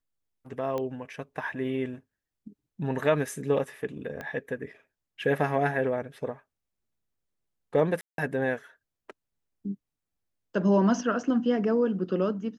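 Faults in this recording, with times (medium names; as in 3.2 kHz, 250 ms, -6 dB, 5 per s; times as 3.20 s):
0.78 s: pop -20 dBFS
4.21 s: pop -23 dBFS
8.01–8.18 s: dropout 172 ms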